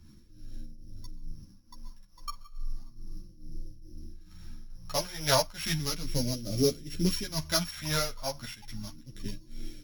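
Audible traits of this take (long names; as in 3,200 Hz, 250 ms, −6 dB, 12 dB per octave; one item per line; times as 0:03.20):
a buzz of ramps at a fixed pitch in blocks of 8 samples
phaser sweep stages 2, 0.34 Hz, lowest notch 300–1,000 Hz
tremolo triangle 2.3 Hz, depth 80%
a shimmering, thickened sound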